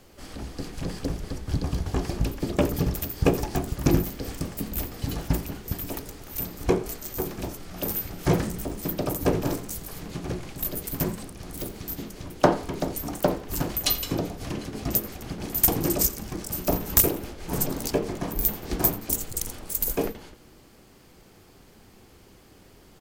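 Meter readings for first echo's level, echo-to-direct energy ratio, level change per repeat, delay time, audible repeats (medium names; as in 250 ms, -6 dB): -19.0 dB, -18.5 dB, -9.0 dB, 86 ms, 2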